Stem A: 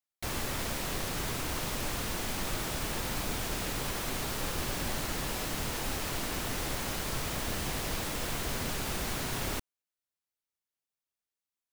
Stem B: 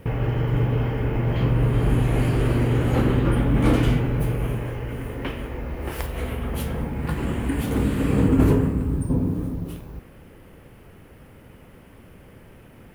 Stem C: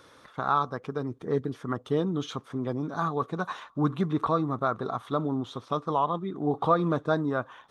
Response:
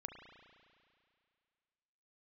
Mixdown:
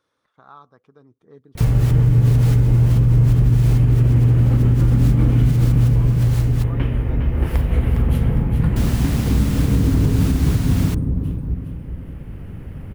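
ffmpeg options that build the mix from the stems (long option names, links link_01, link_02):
-filter_complex "[0:a]adelay=1350,volume=2.5dB,asplit=3[link_01][link_02][link_03];[link_01]atrim=end=6.64,asetpts=PTS-STARTPTS,afade=type=out:start_time=6.636:duration=0.004:curve=hsin[link_04];[link_02]atrim=start=6.64:end=8.76,asetpts=PTS-STARTPTS,volume=0[link_05];[link_03]atrim=start=8.76,asetpts=PTS-STARTPTS,afade=type=in:duration=0.004:curve=hsin[link_06];[link_04][link_05][link_06]concat=n=3:v=0:a=1[link_07];[1:a]bass=frequency=250:gain=14,treble=frequency=4000:gain=-5,dynaudnorm=framelen=120:gausssize=21:maxgain=4dB,adelay=1550,volume=-0.5dB,asplit=2[link_08][link_09];[link_09]volume=-7.5dB[link_10];[2:a]volume=-19dB,asplit=2[link_11][link_12];[link_12]apad=whole_len=576411[link_13];[link_07][link_13]sidechaincompress=threshold=-55dB:ratio=10:attack=16:release=108[link_14];[link_10]aecho=0:1:408|816|1224|1632|2040|2448:1|0.42|0.176|0.0741|0.0311|0.0131[link_15];[link_14][link_08][link_11][link_15]amix=inputs=4:normalize=0,alimiter=limit=-7dB:level=0:latency=1:release=176"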